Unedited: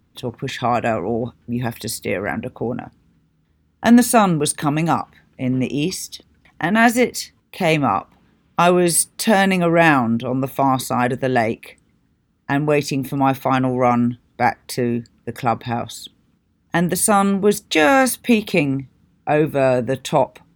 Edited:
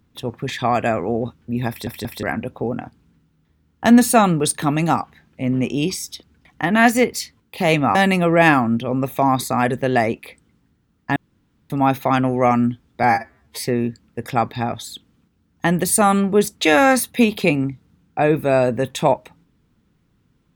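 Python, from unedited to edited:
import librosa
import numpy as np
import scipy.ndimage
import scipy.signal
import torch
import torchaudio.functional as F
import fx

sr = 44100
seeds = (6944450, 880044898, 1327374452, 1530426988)

y = fx.edit(x, sr, fx.stutter_over(start_s=1.69, slice_s=0.18, count=3),
    fx.cut(start_s=7.95, length_s=1.4),
    fx.room_tone_fill(start_s=12.56, length_s=0.54),
    fx.stretch_span(start_s=14.43, length_s=0.3, factor=2.0), tone=tone)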